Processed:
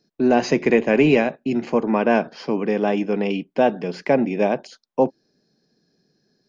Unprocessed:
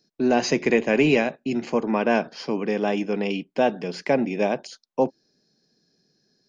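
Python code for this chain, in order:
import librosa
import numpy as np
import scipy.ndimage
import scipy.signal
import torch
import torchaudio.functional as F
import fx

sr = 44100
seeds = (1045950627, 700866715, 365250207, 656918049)

y = fx.high_shelf(x, sr, hz=3700.0, db=-10.0)
y = y * librosa.db_to_amplitude(3.5)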